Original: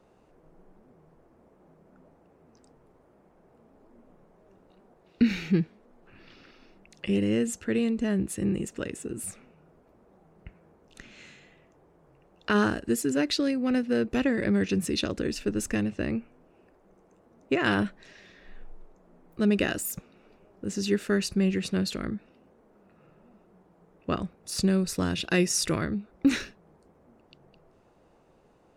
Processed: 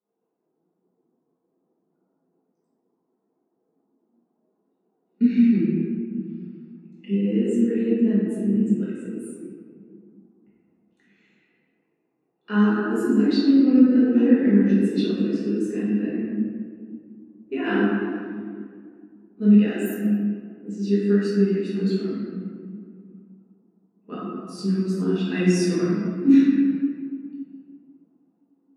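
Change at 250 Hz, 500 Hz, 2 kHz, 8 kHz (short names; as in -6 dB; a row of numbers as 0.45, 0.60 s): +8.5 dB, +4.0 dB, -1.5 dB, n/a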